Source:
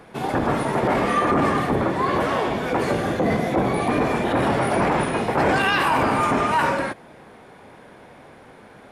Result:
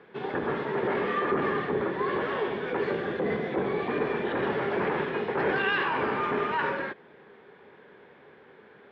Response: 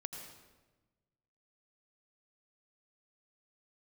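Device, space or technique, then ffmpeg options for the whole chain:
guitar cabinet: -af "highpass=100,equalizer=frequency=110:width_type=q:width=4:gain=-8,equalizer=frequency=280:width_type=q:width=4:gain=-4,equalizer=frequency=410:width_type=q:width=4:gain=10,equalizer=frequency=680:width_type=q:width=4:gain=-6,equalizer=frequency=1700:width_type=q:width=4:gain=6,equalizer=frequency=3300:width_type=q:width=4:gain=3,lowpass=frequency=3700:width=0.5412,lowpass=frequency=3700:width=1.3066,volume=-9dB"

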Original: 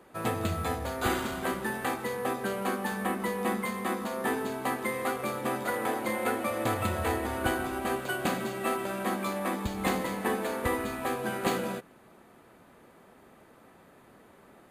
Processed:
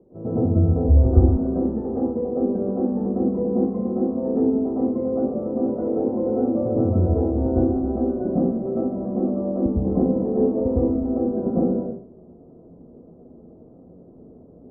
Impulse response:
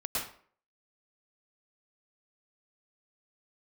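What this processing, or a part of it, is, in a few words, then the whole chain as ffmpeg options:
next room: -filter_complex "[0:a]lowpass=frequency=490:width=0.5412,lowpass=frequency=490:width=1.3066[link_01];[1:a]atrim=start_sample=2205[link_02];[link_01][link_02]afir=irnorm=-1:irlink=0,asettb=1/sr,asplit=3[link_03][link_04][link_05];[link_03]atrim=end=0.884[link_06];[link_04]atrim=start=0.88:end=1.38,asetpts=PTS-STARTPTS,afade=type=in:duration=0.004:curve=qsin,afade=type=out:start_time=0.496:duration=0.004:curve=qsin,lowshelf=frequency=120:width_type=q:width=1.5:gain=9.5[link_07];[link_05]atrim=start=1.376[link_08];[link_06][link_07]acrossfade=duration=0.004:curve1=hsin:curve2=qsin[link_09];[link_09][link_08]acrossfade=duration=0.004:curve1=qsin:curve2=hsin,volume=7dB"

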